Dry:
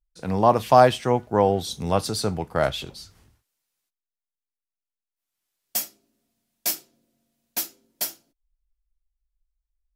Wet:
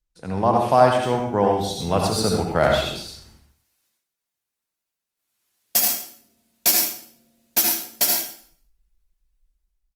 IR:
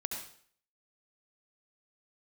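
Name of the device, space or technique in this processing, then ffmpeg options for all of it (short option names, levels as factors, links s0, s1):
speakerphone in a meeting room: -filter_complex "[1:a]atrim=start_sample=2205[s0];[0:a][s0]afir=irnorm=-1:irlink=0,asplit=2[s1][s2];[s2]adelay=120,highpass=300,lowpass=3400,asoftclip=type=hard:threshold=0.282,volume=0.1[s3];[s1][s3]amix=inputs=2:normalize=0,dynaudnorm=f=470:g=5:m=4.47,volume=0.891" -ar 48000 -c:a libopus -b:a 32k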